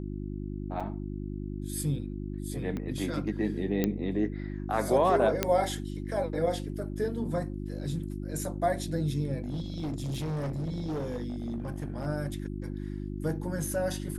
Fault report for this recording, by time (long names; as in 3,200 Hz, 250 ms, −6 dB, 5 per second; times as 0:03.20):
mains hum 50 Hz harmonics 7 −36 dBFS
0:00.80–0:00.81: drop-out 5.3 ms
0:02.77: click −23 dBFS
0:03.84: click −13 dBFS
0:05.43: click −9 dBFS
0:09.44–0:12.07: clipping −29.5 dBFS